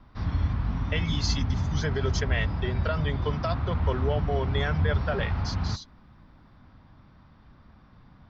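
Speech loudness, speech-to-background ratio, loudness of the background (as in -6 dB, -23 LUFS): -32.0 LUFS, -2.5 dB, -29.5 LUFS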